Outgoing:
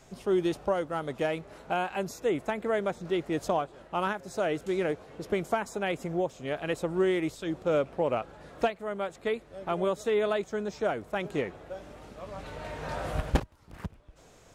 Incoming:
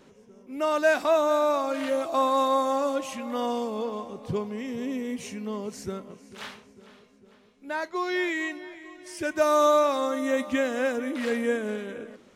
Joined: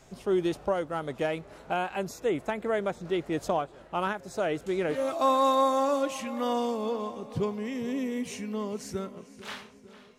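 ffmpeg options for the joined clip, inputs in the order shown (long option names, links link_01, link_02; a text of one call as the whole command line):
ffmpeg -i cue0.wav -i cue1.wav -filter_complex "[0:a]apad=whole_dur=10.18,atrim=end=10.18,atrim=end=5.18,asetpts=PTS-STARTPTS[link_01];[1:a]atrim=start=1.79:end=7.11,asetpts=PTS-STARTPTS[link_02];[link_01][link_02]acrossfade=duration=0.32:curve1=qsin:curve2=qsin" out.wav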